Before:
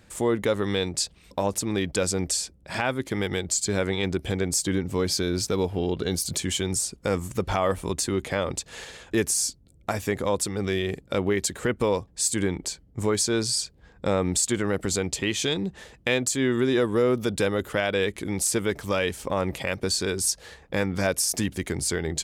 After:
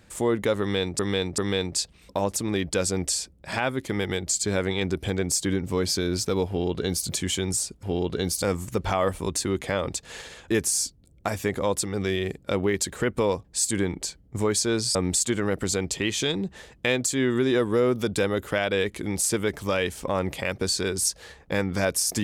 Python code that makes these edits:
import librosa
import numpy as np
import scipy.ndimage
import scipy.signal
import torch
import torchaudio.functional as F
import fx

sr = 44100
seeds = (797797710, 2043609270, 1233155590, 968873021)

y = fx.edit(x, sr, fx.repeat(start_s=0.6, length_s=0.39, count=3),
    fx.duplicate(start_s=5.7, length_s=0.59, to_s=7.05),
    fx.cut(start_s=13.58, length_s=0.59), tone=tone)